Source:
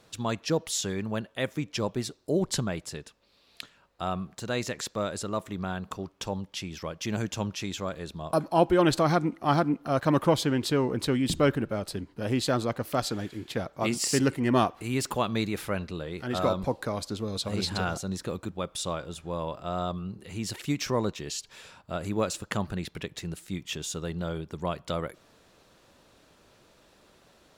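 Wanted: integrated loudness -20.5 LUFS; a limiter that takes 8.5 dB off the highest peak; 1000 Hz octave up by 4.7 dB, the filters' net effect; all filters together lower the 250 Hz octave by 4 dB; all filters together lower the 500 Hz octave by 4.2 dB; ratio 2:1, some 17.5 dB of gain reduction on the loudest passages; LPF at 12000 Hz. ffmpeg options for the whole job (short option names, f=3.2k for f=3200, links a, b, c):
-af "lowpass=12k,equalizer=f=250:t=o:g=-3.5,equalizer=f=500:t=o:g=-7.5,equalizer=f=1k:t=o:g=8.5,acompressor=threshold=-50dB:ratio=2,volume=24dB,alimiter=limit=-7.5dB:level=0:latency=1"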